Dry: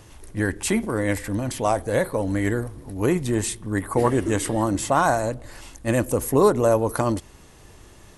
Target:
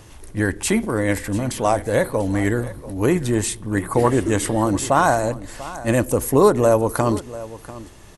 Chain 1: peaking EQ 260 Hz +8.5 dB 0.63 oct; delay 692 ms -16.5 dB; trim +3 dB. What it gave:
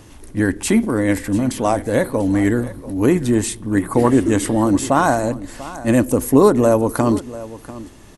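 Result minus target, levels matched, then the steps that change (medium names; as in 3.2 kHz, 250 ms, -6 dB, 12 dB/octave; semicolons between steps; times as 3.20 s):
250 Hz band +3.0 dB
remove: peaking EQ 260 Hz +8.5 dB 0.63 oct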